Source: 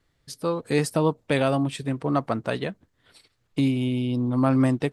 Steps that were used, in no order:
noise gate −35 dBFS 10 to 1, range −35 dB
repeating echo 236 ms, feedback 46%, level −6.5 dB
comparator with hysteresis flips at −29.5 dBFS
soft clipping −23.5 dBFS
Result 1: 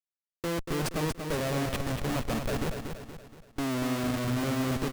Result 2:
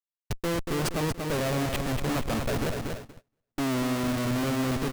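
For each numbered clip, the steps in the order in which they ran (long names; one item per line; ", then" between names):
noise gate, then soft clipping, then comparator with hysteresis, then repeating echo
comparator with hysteresis, then repeating echo, then soft clipping, then noise gate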